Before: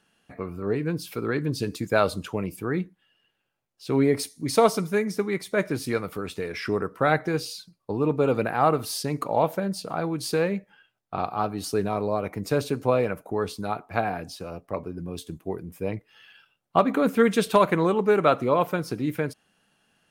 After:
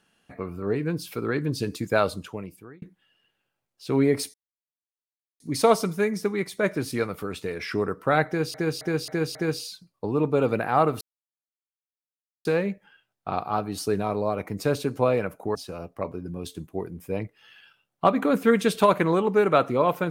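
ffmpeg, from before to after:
-filter_complex "[0:a]asplit=10[s0][s1][s2][s3][s4][s5][s6][s7][s8][s9];[s0]atrim=end=2.82,asetpts=PTS-STARTPTS,afade=t=out:st=1.92:d=0.9[s10];[s1]atrim=start=2.82:end=4.34,asetpts=PTS-STARTPTS,afade=t=in:d=0.004:c=hsin,afade=t=out:st=1.516:d=0.004:c=hsin,apad=pad_dur=1.06[s11];[s2]atrim=start=4.34:end=7.482,asetpts=PTS-STARTPTS,afade=t=in:d=0.004:c=hsin[s12];[s3]atrim=start=7.208:end=7.482[s13];[s4]atrim=start=7.208:end=7.482[s14];[s5]atrim=start=7.208:end=7.482[s15];[s6]atrim=start=7.208:end=8.87,asetpts=PTS-STARTPTS,afade=t=out:st=1.658:d=0.004:c=hsin[s16];[s7]atrim=start=8.87:end=10.31,asetpts=PTS-STARTPTS,volume=0[s17];[s8]atrim=start=10.31:end=13.412,asetpts=PTS-STARTPTS,afade=t=in:d=0.004:c=hsin[s18];[s9]atrim=start=14.268[s19];[s10][s11][s12]concat=n=3:v=0:a=1[s20];[s20][s13]acrossfade=d=0.004:c1=hsin:c2=hsin[s21];[s21][s14]acrossfade=d=0.004:c1=hsin:c2=hsin[s22];[s22][s15]acrossfade=d=0.004:c1=hsin:c2=hsin[s23];[s16][s17][s18]concat=n=3:v=0:a=1[s24];[s23][s24]acrossfade=d=0.004:c1=hsin:c2=hsin[s25];[s25][s19]acrossfade=d=0.004:c1=hsin:c2=hsin"

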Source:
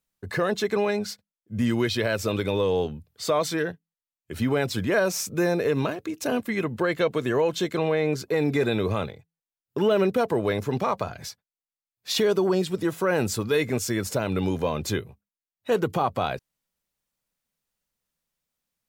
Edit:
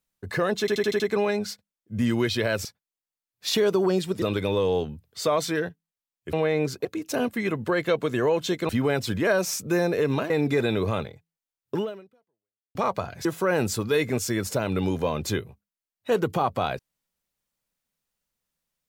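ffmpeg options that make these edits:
-filter_complex "[0:a]asplit=14[s0][s1][s2][s3][s4][s5][s6][s7][s8][s9][s10][s11][s12][s13];[s0]atrim=end=0.682[s14];[s1]atrim=start=0.598:end=0.682[s15];[s2]atrim=start=0.598:end=0.682[s16];[s3]atrim=start=0.598:end=0.682[s17];[s4]atrim=start=0.598:end=0.682[s18];[s5]atrim=start=0.598:end=2.252[s19];[s6]atrim=start=11.278:end=12.852[s20];[s7]atrim=start=2.248:end=4.362[s21];[s8]atrim=start=7.808:end=8.332[s22];[s9]atrim=start=5.968:end=7.812[s23];[s10]atrim=start=4.358:end=5.972[s24];[s11]atrim=start=8.328:end=10.78,asetpts=PTS-STARTPTS,afade=t=out:st=1.462:d=0.99:c=exp[s25];[s12]atrim=start=10.78:end=11.282,asetpts=PTS-STARTPTS,afade=t=in:d=0.004:c=hsin[s26];[s13]atrim=start=12.848[s27];[s14][s15]acrossfade=d=0.004:c1=hsin:c2=hsin[s28];[s28][s16]acrossfade=d=0.004:c1=hsin:c2=hsin[s29];[s29][s17]acrossfade=d=0.004:c1=hsin:c2=hsin[s30];[s30][s18]acrossfade=d=0.004:c1=hsin:c2=hsin[s31];[s31][s19]acrossfade=d=0.004:c1=hsin:c2=hsin[s32];[s32][s20]acrossfade=d=0.004:c1=hsin:c2=hsin[s33];[s33][s21]acrossfade=d=0.004:c1=hsin:c2=hsin[s34];[s34][s22]acrossfade=d=0.004:c1=hsin:c2=hsin[s35];[s35][s23]acrossfade=d=0.004:c1=hsin:c2=hsin[s36];[s36][s24]acrossfade=d=0.004:c1=hsin:c2=hsin[s37];[s25][s26]concat=n=2:v=0:a=1[s38];[s37][s38]acrossfade=d=0.004:c1=hsin:c2=hsin[s39];[s39][s27]acrossfade=d=0.004:c1=hsin:c2=hsin"

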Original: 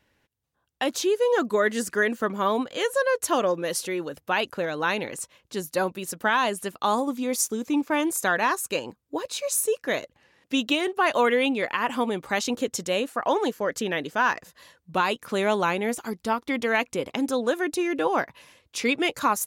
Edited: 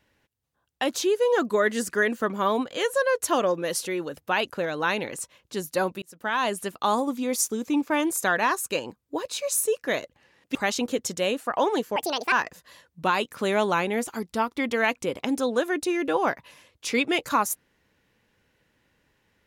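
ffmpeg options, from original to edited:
-filter_complex "[0:a]asplit=5[s0][s1][s2][s3][s4];[s0]atrim=end=6.02,asetpts=PTS-STARTPTS,afade=t=out:st=6.016:d=0.004:c=hsin[s5];[s1]atrim=start=6.02:end=10.552,asetpts=PTS-STARTPTS,afade=t=in:d=0.49[s6];[s2]atrim=start=12.238:end=13.654[s7];[s3]atrim=start=13.65:end=14.23,asetpts=PTS-STARTPTS,asetrate=70560,aresample=44100,atrim=end_sample=15986,asetpts=PTS-STARTPTS[s8];[s4]atrim=start=14.226[s9];[s5][s6]concat=n=2:v=0:a=1[s10];[s10][s7]acrossfade=d=0.004:c1=hsin:c2=hsin[s11];[s11][s8]acrossfade=d=0.004:c1=hsin:c2=hsin[s12];[s12][s9]acrossfade=d=0.004:c1=hsin:c2=hsin"

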